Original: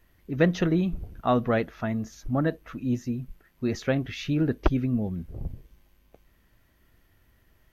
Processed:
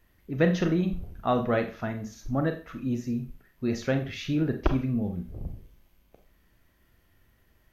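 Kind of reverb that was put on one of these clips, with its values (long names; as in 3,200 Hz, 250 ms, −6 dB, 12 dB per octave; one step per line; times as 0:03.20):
four-comb reverb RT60 0.35 s, combs from 30 ms, DRR 6 dB
level −2 dB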